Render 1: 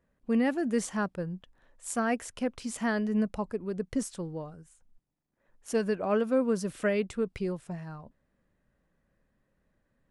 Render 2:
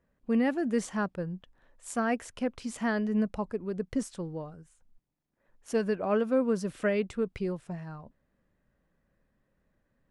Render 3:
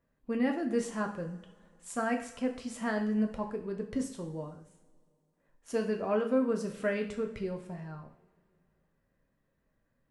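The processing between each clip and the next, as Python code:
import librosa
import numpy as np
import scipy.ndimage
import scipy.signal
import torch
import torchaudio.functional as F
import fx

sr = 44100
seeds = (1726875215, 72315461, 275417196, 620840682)

y1 = fx.high_shelf(x, sr, hz=6800.0, db=-7.5)
y2 = fx.rev_double_slope(y1, sr, seeds[0], early_s=0.53, late_s=2.5, knee_db=-22, drr_db=2.5)
y2 = y2 * 10.0 ** (-4.0 / 20.0)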